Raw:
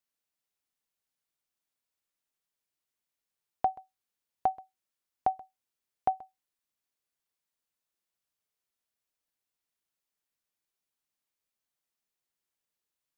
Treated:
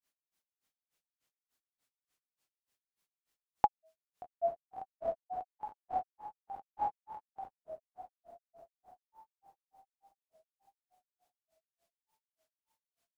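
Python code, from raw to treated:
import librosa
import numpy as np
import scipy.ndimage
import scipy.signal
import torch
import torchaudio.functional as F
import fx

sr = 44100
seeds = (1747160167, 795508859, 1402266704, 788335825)

y = fx.echo_diffused(x, sr, ms=711, feedback_pct=46, wet_db=-7.0)
y = fx.granulator(y, sr, seeds[0], grain_ms=155.0, per_s=3.4, spray_ms=100.0, spread_st=3)
y = y * librosa.db_to_amplitude(7.0)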